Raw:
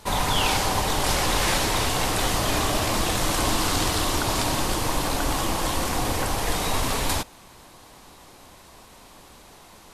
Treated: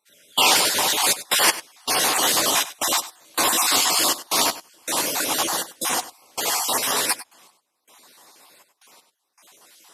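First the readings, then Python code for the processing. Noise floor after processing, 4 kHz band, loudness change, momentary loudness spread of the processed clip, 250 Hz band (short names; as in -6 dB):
-75 dBFS, +5.0 dB, +4.0 dB, 9 LU, -5.5 dB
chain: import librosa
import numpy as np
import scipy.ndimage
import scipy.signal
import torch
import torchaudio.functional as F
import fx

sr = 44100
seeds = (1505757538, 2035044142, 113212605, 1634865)

p1 = fx.spec_dropout(x, sr, seeds[0], share_pct=35)
p2 = scipy.signal.sosfilt(scipy.signal.butter(2, 250.0, 'highpass', fs=sr, output='sos'), p1)
p3 = fx.tilt_eq(p2, sr, slope=2.0)
p4 = fx.step_gate(p3, sr, bpm=80, pattern='..xxxx.x', floor_db=-24.0, edge_ms=4.5)
p5 = 10.0 ** (-17.5 / 20.0) * np.tanh(p4 / 10.0 ** (-17.5 / 20.0))
p6 = p4 + (p5 * 10.0 ** (-6.5 / 20.0))
p7 = fx.doubler(p6, sr, ms=12.0, db=-10.5)
p8 = p7 + fx.echo_single(p7, sr, ms=97, db=-10.5, dry=0)
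p9 = fx.upward_expand(p8, sr, threshold_db=-37.0, expansion=1.5)
y = p9 * 10.0 ** (3.0 / 20.0)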